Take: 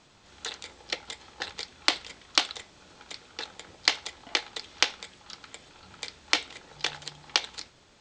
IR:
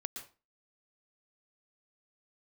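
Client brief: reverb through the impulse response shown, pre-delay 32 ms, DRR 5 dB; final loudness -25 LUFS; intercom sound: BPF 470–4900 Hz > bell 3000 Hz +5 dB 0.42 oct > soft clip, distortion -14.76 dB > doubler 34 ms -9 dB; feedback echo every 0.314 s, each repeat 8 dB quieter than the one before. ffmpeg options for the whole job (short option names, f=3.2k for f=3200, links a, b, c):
-filter_complex "[0:a]aecho=1:1:314|628|942|1256|1570:0.398|0.159|0.0637|0.0255|0.0102,asplit=2[a][b];[1:a]atrim=start_sample=2205,adelay=32[c];[b][c]afir=irnorm=-1:irlink=0,volume=-3.5dB[d];[a][d]amix=inputs=2:normalize=0,highpass=470,lowpass=4.9k,equalizer=f=3k:t=o:w=0.42:g=5,asoftclip=threshold=-10dB,asplit=2[e][f];[f]adelay=34,volume=-9dB[g];[e][g]amix=inputs=2:normalize=0,volume=4.5dB"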